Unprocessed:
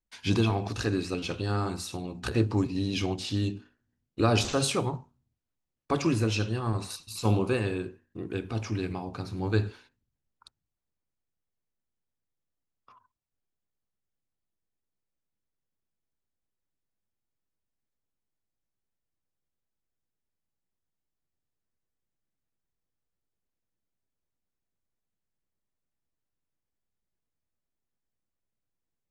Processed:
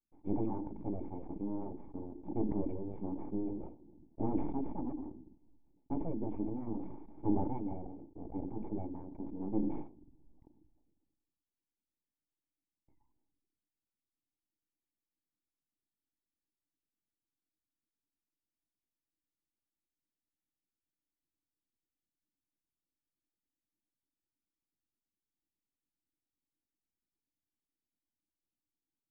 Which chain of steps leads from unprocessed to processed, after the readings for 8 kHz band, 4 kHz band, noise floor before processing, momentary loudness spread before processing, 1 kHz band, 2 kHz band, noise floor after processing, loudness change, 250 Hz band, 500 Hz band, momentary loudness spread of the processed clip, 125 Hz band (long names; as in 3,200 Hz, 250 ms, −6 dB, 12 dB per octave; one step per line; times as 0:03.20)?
below −35 dB, below −40 dB, below −85 dBFS, 11 LU, −10.5 dB, below −35 dB, below −85 dBFS, −10.0 dB, −5.5 dB, −11.0 dB, 11 LU, −15.5 dB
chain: reverb reduction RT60 0.76 s
Chebyshev band-stop filter 1,100–2,600 Hz, order 3
full-wave rectification
formant resonators in series u
level that may fall only so fast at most 39 dB per second
level +5 dB